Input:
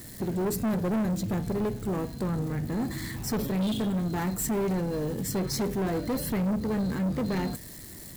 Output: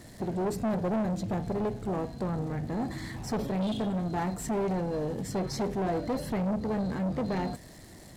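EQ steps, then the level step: air absorption 52 m; bell 710 Hz +7.5 dB 0.84 oct; -3.0 dB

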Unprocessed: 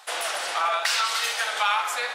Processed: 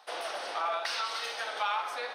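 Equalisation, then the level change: polynomial smoothing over 15 samples; bell 2300 Hz -11 dB 2.9 oct; 0.0 dB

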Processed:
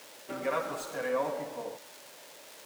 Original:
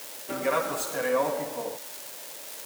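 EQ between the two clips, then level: high shelf 7400 Hz -11.5 dB; -5.0 dB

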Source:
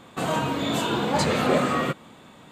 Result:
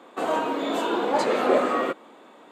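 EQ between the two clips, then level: HPF 300 Hz 24 dB/oct; high shelf 2000 Hz -12 dB; +3.5 dB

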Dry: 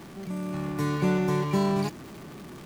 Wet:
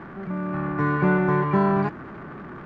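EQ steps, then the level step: synth low-pass 1500 Hz, resonance Q 2.6; +3.5 dB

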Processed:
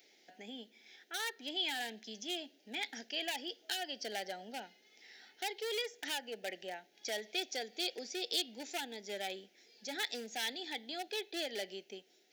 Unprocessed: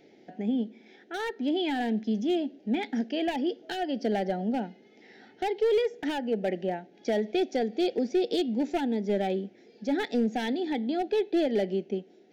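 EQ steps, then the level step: dynamic EQ 210 Hz, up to -3 dB, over -36 dBFS, Q 1.2; differentiator; +8.5 dB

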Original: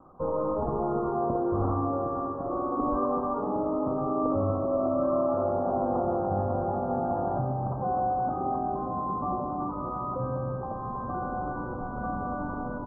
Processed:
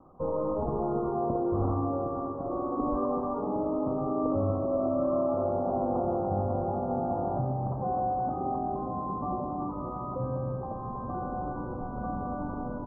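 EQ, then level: LPF 1200 Hz 12 dB/oct; air absorption 400 m; 0.0 dB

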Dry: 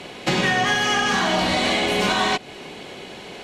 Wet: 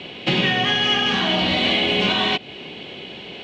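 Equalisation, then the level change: HPF 64 Hz; synth low-pass 3000 Hz, resonance Q 2.9; bell 1400 Hz -8.5 dB 2.5 oct; +2.5 dB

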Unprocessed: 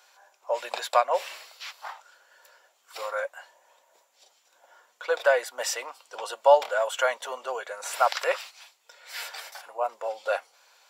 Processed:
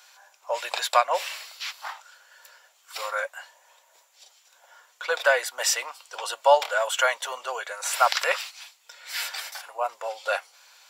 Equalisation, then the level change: HPF 1400 Hz 6 dB/oct; +7.0 dB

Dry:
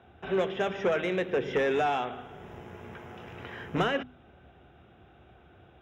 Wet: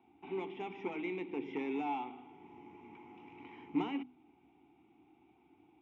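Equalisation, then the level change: vowel filter u; high shelf 4800 Hz +6 dB; +3.5 dB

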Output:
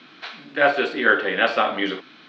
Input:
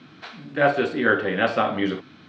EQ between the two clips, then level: BPF 280–4000 Hz; high shelf 2100 Hz +11 dB; 0.0 dB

